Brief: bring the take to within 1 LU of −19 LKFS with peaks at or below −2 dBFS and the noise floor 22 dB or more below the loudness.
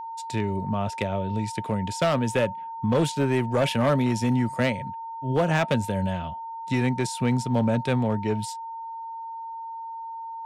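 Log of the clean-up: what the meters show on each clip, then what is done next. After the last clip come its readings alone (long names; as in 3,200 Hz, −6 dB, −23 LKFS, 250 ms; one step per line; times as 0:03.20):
share of clipped samples 0.9%; peaks flattened at −16.0 dBFS; interfering tone 910 Hz; level of the tone −33 dBFS; integrated loudness −26.5 LKFS; sample peak −16.0 dBFS; target loudness −19.0 LKFS
→ clipped peaks rebuilt −16 dBFS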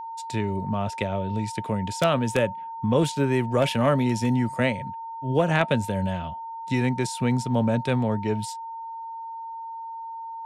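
share of clipped samples 0.0%; interfering tone 910 Hz; level of the tone −33 dBFS
→ notch filter 910 Hz, Q 30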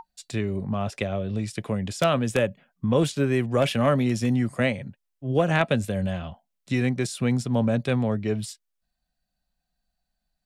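interfering tone none found; integrated loudness −25.5 LKFS; sample peak −7.0 dBFS; target loudness −19.0 LKFS
→ level +6.5 dB
brickwall limiter −2 dBFS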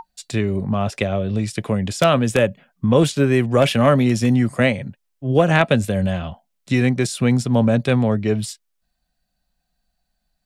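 integrated loudness −19.0 LKFS; sample peak −2.0 dBFS; background noise floor −74 dBFS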